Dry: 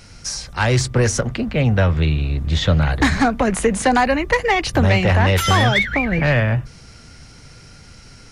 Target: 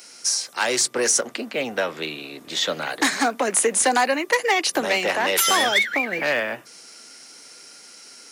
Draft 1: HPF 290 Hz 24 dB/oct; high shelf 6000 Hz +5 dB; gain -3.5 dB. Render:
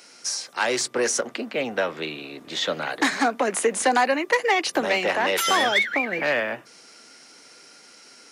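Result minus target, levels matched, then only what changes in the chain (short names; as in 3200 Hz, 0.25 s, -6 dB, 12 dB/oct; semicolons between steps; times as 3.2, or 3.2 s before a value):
8000 Hz band -5.0 dB
change: high shelf 6000 Hz +16.5 dB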